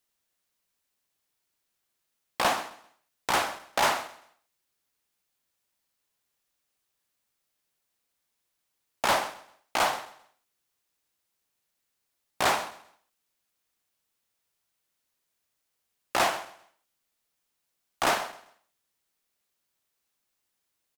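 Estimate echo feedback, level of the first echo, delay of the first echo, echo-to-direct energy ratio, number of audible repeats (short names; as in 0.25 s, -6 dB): 29%, -17.0 dB, 0.131 s, -16.5 dB, 2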